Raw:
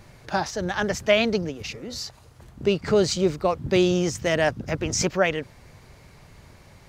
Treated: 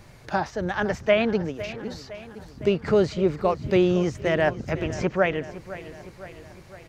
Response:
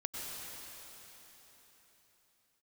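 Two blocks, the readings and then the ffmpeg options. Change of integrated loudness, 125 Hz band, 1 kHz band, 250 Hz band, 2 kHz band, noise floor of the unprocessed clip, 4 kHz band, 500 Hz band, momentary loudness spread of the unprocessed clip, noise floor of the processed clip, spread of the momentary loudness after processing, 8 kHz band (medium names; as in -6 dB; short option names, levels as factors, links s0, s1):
-0.5 dB, 0.0 dB, 0.0 dB, +0.5 dB, -1.5 dB, -51 dBFS, -7.5 dB, 0.0 dB, 13 LU, -48 dBFS, 19 LU, under -10 dB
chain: -filter_complex "[0:a]acrossover=split=2800[s0][s1];[s1]acompressor=threshold=0.00398:ratio=6[s2];[s0][s2]amix=inputs=2:normalize=0,aecho=1:1:509|1018|1527|2036|2545|3054:0.168|0.099|0.0584|0.0345|0.0203|0.012"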